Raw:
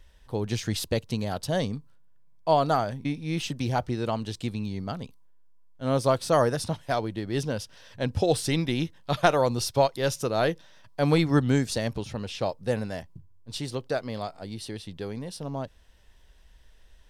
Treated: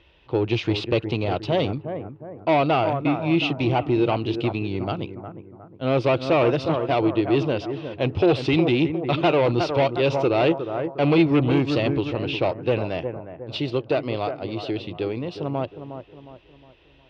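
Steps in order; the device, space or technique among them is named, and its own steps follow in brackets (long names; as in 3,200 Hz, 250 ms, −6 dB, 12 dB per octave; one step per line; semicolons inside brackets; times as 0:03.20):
analogue delay pedal into a guitar amplifier (bucket-brigade delay 360 ms, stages 4,096, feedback 41%, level −10.5 dB; tube saturation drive 24 dB, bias 0.4; loudspeaker in its box 93–3,700 Hz, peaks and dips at 210 Hz −9 dB, 340 Hz +9 dB, 1,700 Hz −9 dB, 2,600 Hz +8 dB)
level +8.5 dB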